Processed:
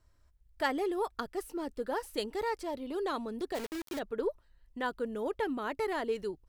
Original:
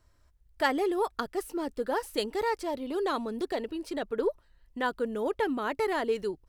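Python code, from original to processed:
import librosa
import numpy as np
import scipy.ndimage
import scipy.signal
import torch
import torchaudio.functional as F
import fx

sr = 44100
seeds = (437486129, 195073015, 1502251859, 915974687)

y = fx.low_shelf(x, sr, hz=110.0, db=3.5)
y = fx.quant_dither(y, sr, seeds[0], bits=6, dither='none', at=(3.54, 3.98), fade=0.02)
y = F.gain(torch.from_numpy(y), -4.5).numpy()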